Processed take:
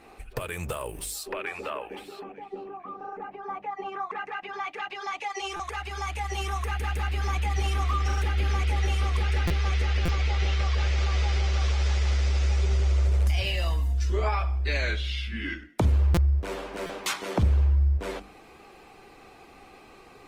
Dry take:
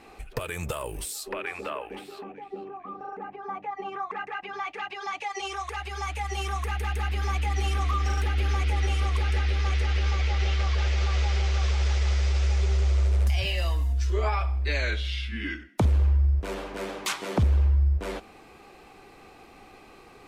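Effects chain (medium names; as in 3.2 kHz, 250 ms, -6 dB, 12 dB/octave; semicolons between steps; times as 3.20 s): hum notches 50/100/150/200/250/300 Hz; buffer glitch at 5.56/9.47/10.05/16.14/16.86 s, samples 256, times 5; Opus 24 kbps 48 kHz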